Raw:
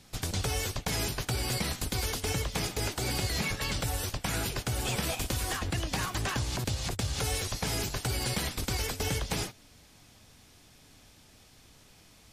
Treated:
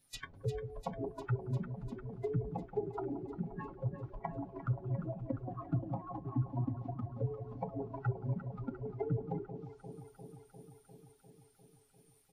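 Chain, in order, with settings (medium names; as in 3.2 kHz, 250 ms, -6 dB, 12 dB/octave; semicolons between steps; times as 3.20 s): wow and flutter 37 cents; de-hum 47.59 Hz, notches 3; low-pass that closes with the level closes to 480 Hz, closed at -28 dBFS; comb 7.3 ms, depth 63%; spectral noise reduction 23 dB; echo whose repeats swap between lows and highs 175 ms, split 870 Hz, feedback 84%, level -9 dB; trim +1 dB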